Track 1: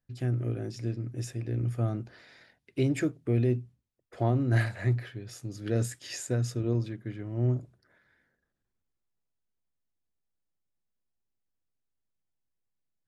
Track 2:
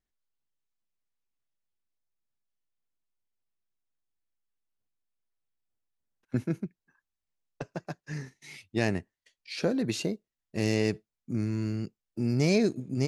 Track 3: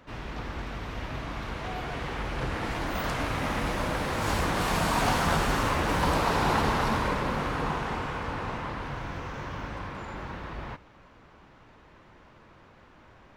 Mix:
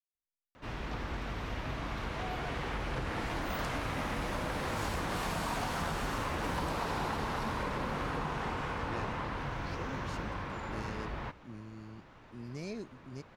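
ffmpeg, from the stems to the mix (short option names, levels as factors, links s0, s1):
-filter_complex "[1:a]adelay=150,volume=0.141[s0];[2:a]acompressor=threshold=0.0316:ratio=6,adelay=550,volume=0.841[s1];[s0][s1]amix=inputs=2:normalize=0"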